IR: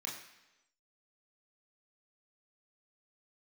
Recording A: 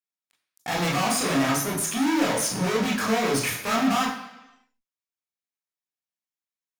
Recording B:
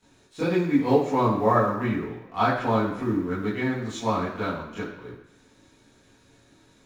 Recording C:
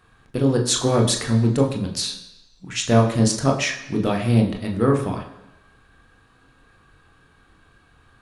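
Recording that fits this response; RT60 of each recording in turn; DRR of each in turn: A; 1.0, 1.0, 1.0 seconds; −3.5, −12.5, 1.5 decibels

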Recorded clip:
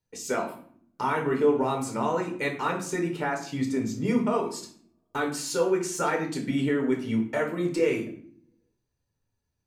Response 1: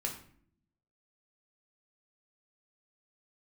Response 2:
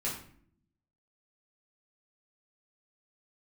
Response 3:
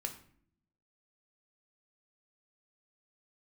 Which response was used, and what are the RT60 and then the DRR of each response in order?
1; 0.60, 0.60, 0.60 seconds; 0.5, −6.5, 4.5 decibels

